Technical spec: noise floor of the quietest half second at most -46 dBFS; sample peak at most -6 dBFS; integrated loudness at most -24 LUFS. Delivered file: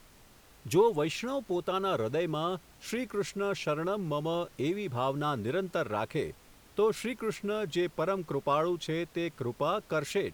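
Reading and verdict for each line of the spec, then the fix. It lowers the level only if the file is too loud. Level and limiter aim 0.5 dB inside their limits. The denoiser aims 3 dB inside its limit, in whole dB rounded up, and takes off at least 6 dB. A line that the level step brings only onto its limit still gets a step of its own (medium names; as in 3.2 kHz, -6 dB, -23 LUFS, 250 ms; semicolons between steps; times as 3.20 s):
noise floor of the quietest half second -57 dBFS: pass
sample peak -13.5 dBFS: pass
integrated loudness -32.0 LUFS: pass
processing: none needed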